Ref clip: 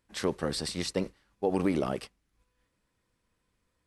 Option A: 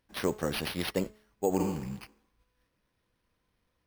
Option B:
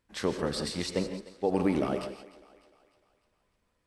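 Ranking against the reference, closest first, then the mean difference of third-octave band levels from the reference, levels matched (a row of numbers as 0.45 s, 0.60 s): B, A; 3.0 dB, 6.0 dB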